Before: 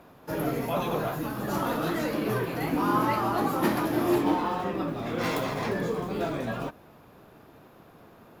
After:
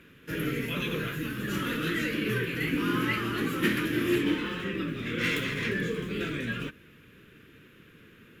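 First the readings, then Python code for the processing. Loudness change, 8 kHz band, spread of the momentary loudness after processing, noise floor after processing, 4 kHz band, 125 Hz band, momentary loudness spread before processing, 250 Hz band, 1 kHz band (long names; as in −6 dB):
−1.5 dB, −1.0 dB, 6 LU, −56 dBFS, +5.5 dB, 0.0 dB, 7 LU, −1.0 dB, −10.5 dB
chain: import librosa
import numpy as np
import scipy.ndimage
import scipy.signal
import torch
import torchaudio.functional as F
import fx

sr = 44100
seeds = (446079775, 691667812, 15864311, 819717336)

y = fx.curve_eq(x, sr, hz=(190.0, 470.0, 740.0, 1600.0, 3000.0, 4600.0, 7700.0, 15000.0), db=(0, -3, -27, 5, 9, -4, 1, -5))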